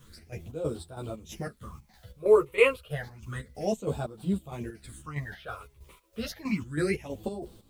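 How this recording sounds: phasing stages 8, 0.3 Hz, lowest notch 210–2000 Hz; a quantiser's noise floor 12-bit, dither triangular; chopped level 3.1 Hz, depth 65%, duty 55%; a shimmering, thickened sound

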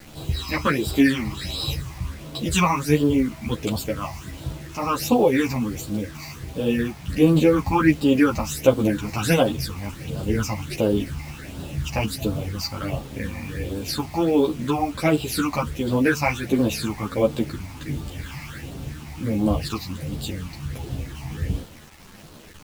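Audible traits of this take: phasing stages 8, 1.4 Hz, lowest notch 440–2000 Hz; a quantiser's noise floor 8-bit, dither none; a shimmering, thickened sound

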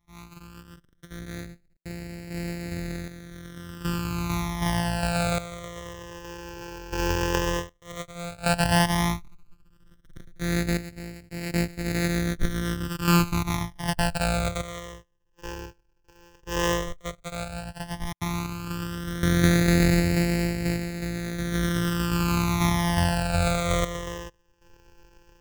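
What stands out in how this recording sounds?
a buzz of ramps at a fixed pitch in blocks of 256 samples; phasing stages 12, 0.11 Hz, lowest notch 210–1100 Hz; random-step tremolo 1.3 Hz, depth 90%

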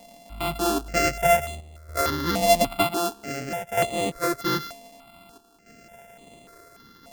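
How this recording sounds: a buzz of ramps at a fixed pitch in blocks of 64 samples; chopped level 0.53 Hz, depth 60%, duty 85%; notches that jump at a steady rate 3.4 Hz 380–5300 Hz

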